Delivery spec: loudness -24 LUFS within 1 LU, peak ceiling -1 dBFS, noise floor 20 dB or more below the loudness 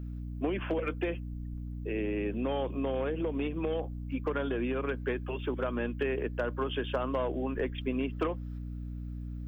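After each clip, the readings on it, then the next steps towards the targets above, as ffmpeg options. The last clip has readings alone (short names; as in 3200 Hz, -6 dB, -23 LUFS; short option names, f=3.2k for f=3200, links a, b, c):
hum 60 Hz; harmonics up to 300 Hz; hum level -36 dBFS; loudness -34.0 LUFS; peak -19.5 dBFS; loudness target -24.0 LUFS
-> -af "bandreject=f=60:t=h:w=4,bandreject=f=120:t=h:w=4,bandreject=f=180:t=h:w=4,bandreject=f=240:t=h:w=4,bandreject=f=300:t=h:w=4"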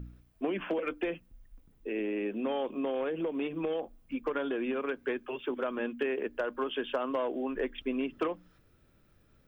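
hum none; loudness -34.0 LUFS; peak -21.0 dBFS; loudness target -24.0 LUFS
-> -af "volume=10dB"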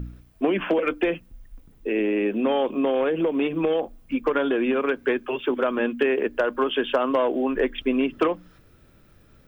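loudness -24.0 LUFS; peak -11.0 dBFS; noise floor -55 dBFS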